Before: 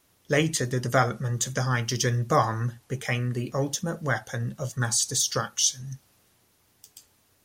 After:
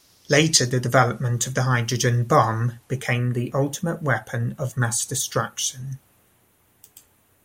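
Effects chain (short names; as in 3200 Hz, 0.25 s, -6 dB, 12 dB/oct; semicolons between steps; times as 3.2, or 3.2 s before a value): bell 5000 Hz +11 dB 0.88 oct, from 0.7 s -4 dB, from 3.13 s -11.5 dB; gain +5 dB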